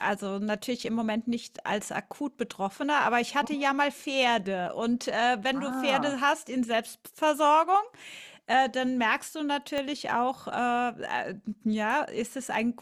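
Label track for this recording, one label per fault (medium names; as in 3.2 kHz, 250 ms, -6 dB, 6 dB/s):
9.780000	9.780000	pop -18 dBFS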